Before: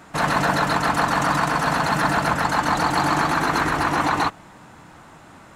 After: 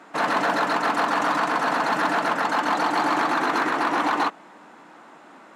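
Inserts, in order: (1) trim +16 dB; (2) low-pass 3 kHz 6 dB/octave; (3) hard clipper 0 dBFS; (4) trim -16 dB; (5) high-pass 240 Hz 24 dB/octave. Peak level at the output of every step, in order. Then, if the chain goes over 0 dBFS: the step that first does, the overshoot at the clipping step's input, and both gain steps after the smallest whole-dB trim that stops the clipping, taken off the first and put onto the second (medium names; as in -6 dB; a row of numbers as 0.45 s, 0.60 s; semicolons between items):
+9.5 dBFS, +9.0 dBFS, 0.0 dBFS, -16.0 dBFS, -10.5 dBFS; step 1, 9.0 dB; step 1 +7 dB, step 4 -7 dB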